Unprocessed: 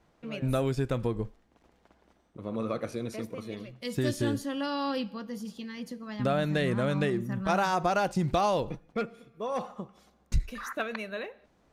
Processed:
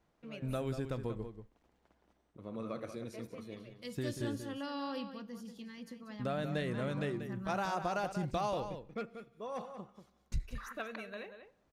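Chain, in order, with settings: outdoor echo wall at 32 m, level -9 dB; gain -9 dB

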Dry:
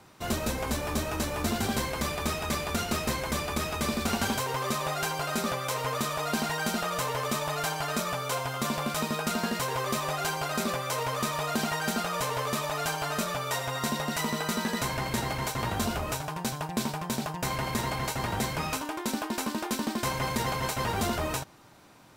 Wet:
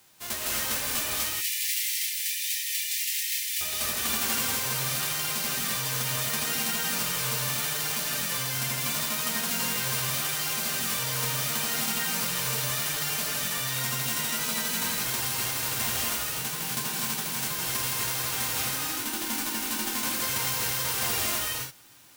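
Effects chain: spectral whitening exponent 0.1; 1.14–3.61 steep high-pass 1800 Hz 96 dB/oct; non-linear reverb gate 0.29 s rising, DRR -4 dB; gain -4 dB

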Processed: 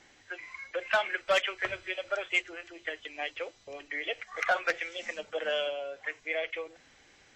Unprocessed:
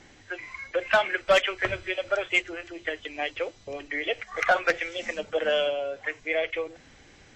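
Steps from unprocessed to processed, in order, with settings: low shelf 350 Hz -10.5 dB; gain -4 dB

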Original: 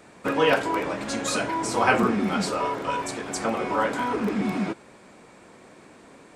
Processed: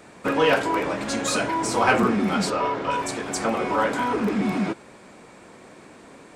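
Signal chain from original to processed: in parallel at -4.5 dB: soft clip -22 dBFS, distortion -10 dB; 2.5–2.91 on the sum: LPF 5200 Hz 12 dB/oct; gain -1 dB

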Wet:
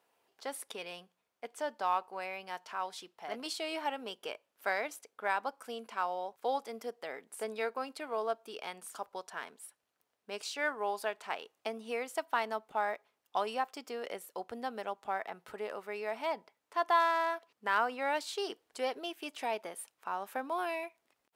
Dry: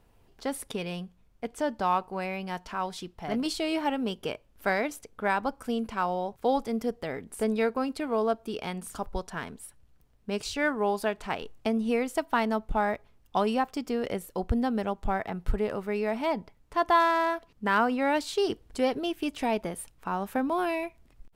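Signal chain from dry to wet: HPF 540 Hz 12 dB/oct; gain -4.5 dB

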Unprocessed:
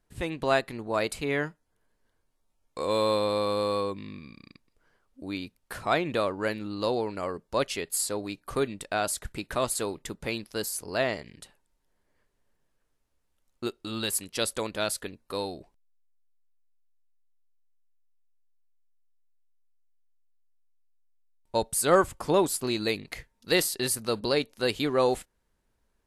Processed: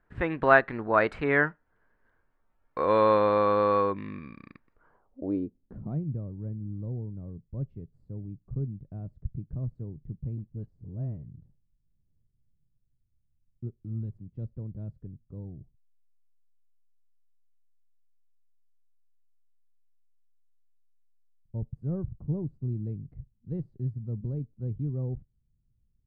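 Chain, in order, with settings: low-pass sweep 1600 Hz -> 130 Hz, 4.69–6.05; 10.37–11.29 dispersion highs, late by 41 ms, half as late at 820 Hz; gain +2.5 dB

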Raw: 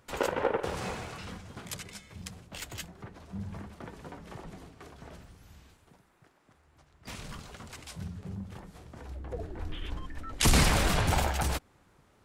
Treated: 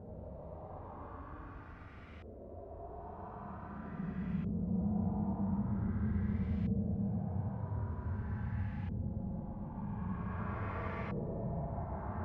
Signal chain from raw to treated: Paulstretch 31×, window 0.05 s, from 3.2; LFO low-pass saw up 0.45 Hz 460–2400 Hz; gain +1 dB

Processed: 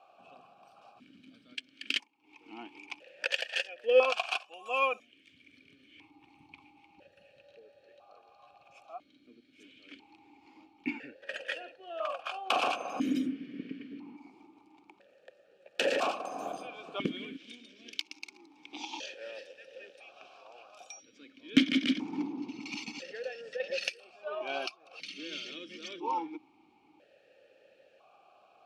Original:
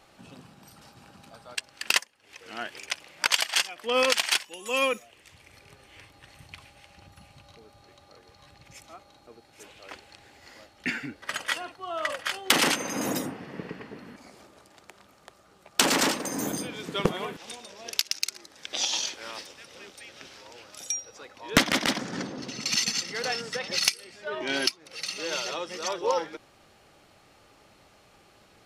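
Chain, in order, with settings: notch 2000 Hz, Q 5.1; 23.05–23.6 compressor 5:1, threshold -35 dBFS, peak gain reduction 9 dB; vowel sequencer 1 Hz; gain +7 dB

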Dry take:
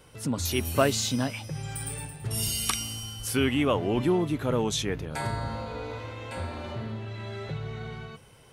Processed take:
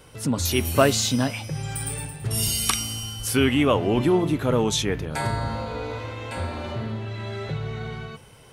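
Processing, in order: de-hum 176.9 Hz, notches 19; gain +5 dB

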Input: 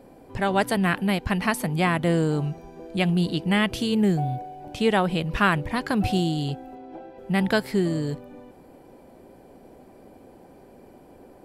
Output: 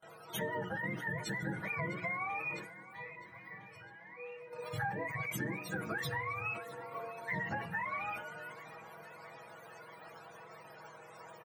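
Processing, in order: spectrum mirrored in octaves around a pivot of 600 Hz; gate with hold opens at -45 dBFS; low shelf 460 Hz -5.5 dB; notches 60/120/180/240/300/360/420/480 Hz; comb 6.2 ms, depth 73%; compressor 12:1, threshold -35 dBFS, peak gain reduction 21 dB; 2.51–4.53 resonator 490 Hz, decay 0.36 s, mix 90%; tape echo 0.654 s, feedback 83%, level -17 dB, low-pass 5800 Hz; reverb RT60 0.70 s, pre-delay 43 ms, DRR 19.5 dB; sustainer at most 74 dB/s

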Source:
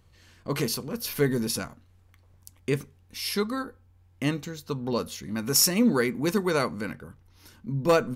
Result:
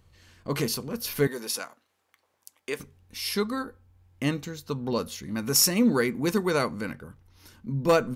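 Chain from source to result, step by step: 1.27–2.8 HPF 510 Hz 12 dB/oct

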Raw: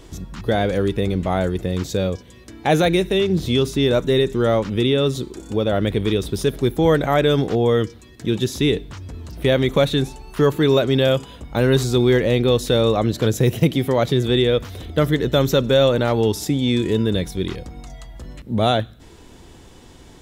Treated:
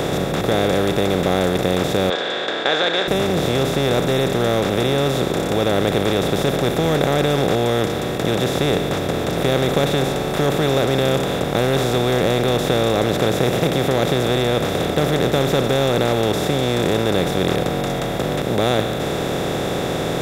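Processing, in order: per-bin compression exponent 0.2; 2.1–3.08 speaker cabinet 420–6500 Hz, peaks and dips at 1600 Hz +9 dB, 3500 Hz +8 dB, 5900 Hz -5 dB; gain -9 dB

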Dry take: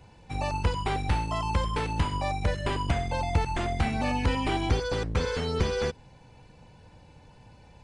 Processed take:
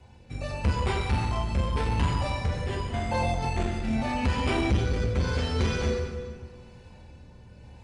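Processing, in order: 2.47–4.03 negative-ratio compressor -28 dBFS, ratio -0.5; rotary speaker horn 0.85 Hz; reverb RT60 1.6 s, pre-delay 6 ms, DRR -2 dB; core saturation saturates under 200 Hz

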